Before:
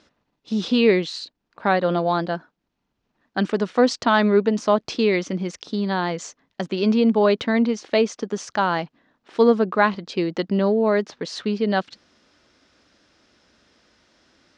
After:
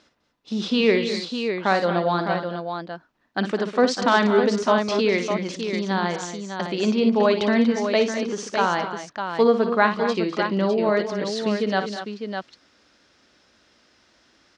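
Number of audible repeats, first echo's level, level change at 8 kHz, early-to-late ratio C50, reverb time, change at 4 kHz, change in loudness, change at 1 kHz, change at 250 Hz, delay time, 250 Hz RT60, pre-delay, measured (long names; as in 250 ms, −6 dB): 4, −9.5 dB, can't be measured, no reverb audible, no reverb audible, +1.5 dB, −1.0 dB, +0.5 dB, −1.5 dB, 57 ms, no reverb audible, no reverb audible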